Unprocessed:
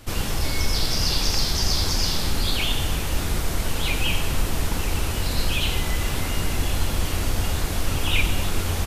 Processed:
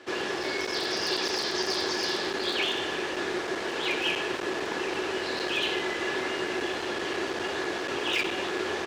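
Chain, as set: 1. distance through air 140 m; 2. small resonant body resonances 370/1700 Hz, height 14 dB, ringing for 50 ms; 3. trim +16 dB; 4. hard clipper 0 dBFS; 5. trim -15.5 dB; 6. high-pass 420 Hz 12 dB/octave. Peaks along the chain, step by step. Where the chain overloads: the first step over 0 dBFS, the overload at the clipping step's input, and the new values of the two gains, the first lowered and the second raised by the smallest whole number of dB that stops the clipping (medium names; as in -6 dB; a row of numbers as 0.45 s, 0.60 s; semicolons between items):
-8.5 dBFS, -7.5 dBFS, +8.5 dBFS, 0.0 dBFS, -15.5 dBFS, -13.5 dBFS; step 3, 8.5 dB; step 3 +7 dB, step 5 -6.5 dB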